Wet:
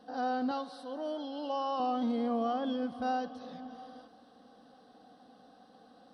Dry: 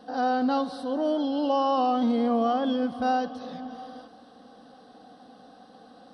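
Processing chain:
0:00.51–0:01.80: low-shelf EQ 330 Hz −11 dB
level −7.5 dB

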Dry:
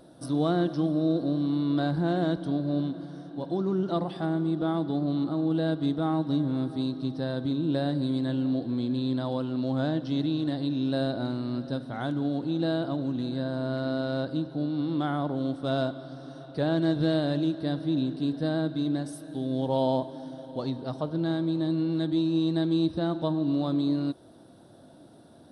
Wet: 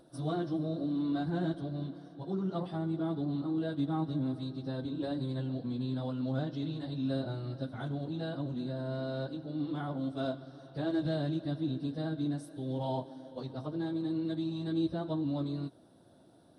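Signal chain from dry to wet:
dynamic equaliser 110 Hz, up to +5 dB, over −44 dBFS, Q 1.5
time stretch by phase vocoder 0.65×
level −4.5 dB

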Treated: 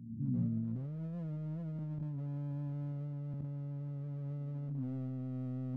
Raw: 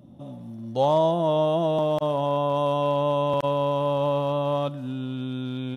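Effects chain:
fade in at the beginning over 0.52 s
inverse Chebyshev low-pass filter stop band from 620 Hz, stop band 50 dB
gain into a clipping stage and back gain 32 dB
backwards echo 421 ms −18.5 dB
compressor whose output falls as the input rises −43 dBFS, ratio −1
level +4 dB

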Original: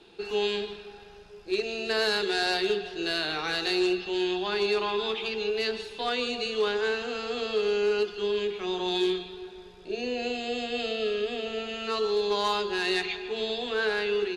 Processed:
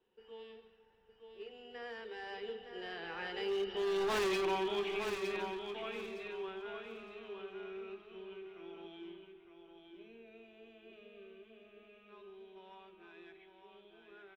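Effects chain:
source passing by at 0:04.20, 27 m/s, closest 1.9 metres
in parallel at 0 dB: downward compressor, threshold −46 dBFS, peak gain reduction 19 dB
on the sum: Savitzky-Golay smoothing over 25 samples
hard clipping −38 dBFS, distortion −4 dB
on a send: repeating echo 912 ms, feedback 24%, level −6.5 dB
on the sum: level +6.5 dB

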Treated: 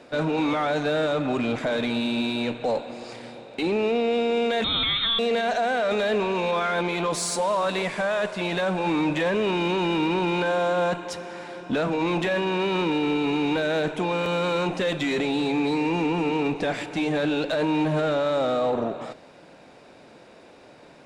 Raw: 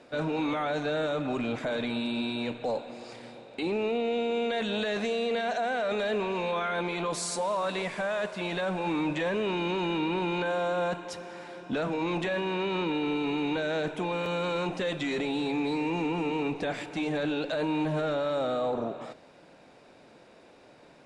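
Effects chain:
harmonic generator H 8 −31 dB, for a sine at −20 dBFS
0:04.64–0:05.19: voice inversion scrambler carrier 3,900 Hz
level +5.5 dB

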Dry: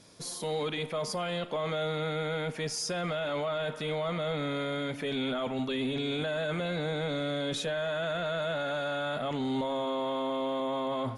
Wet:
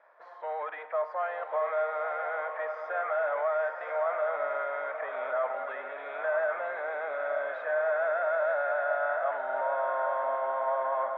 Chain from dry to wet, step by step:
gain on one half-wave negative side −3 dB
Chebyshev band-pass filter 610–1,800 Hz, order 3
on a send: feedback delay with all-pass diffusion 1,005 ms, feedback 41%, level −6 dB
on the sum: level +6.5 dB

